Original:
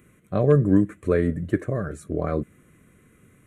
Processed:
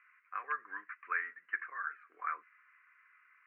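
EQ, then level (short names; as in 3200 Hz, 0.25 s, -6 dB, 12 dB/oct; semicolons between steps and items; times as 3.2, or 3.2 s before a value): HPF 1100 Hz 24 dB/oct; steep low-pass 2800 Hz 48 dB/oct; fixed phaser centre 1500 Hz, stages 4; +2.5 dB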